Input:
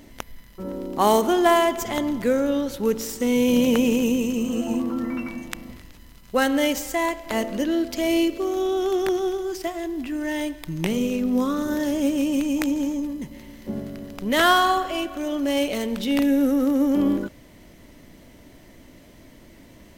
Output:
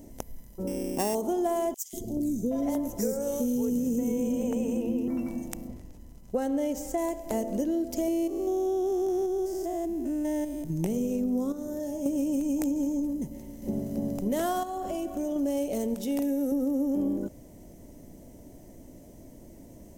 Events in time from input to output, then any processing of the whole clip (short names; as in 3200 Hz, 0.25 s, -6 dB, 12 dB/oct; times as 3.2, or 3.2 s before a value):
0.67–1.15 sample sorter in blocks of 16 samples
1.74–5.08 three bands offset in time highs, lows, mids 0.19/0.77 s, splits 440/3500 Hz
5.67–6.98 high shelf 6100 Hz -10 dB
8.08–10.7 stepped spectrum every 0.2 s
11.52–12.06 resonator 86 Hz, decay 0.4 s, mix 80%
13.33–13.91 echo throw 0.29 s, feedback 55%, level -1 dB
14.63–15.36 compressor, threshold -26 dBFS
15.94–16.52 low shelf 320 Hz -8.5 dB
whole clip: band shelf 2200 Hz -15 dB 2.4 oct; compressor, threshold -25 dBFS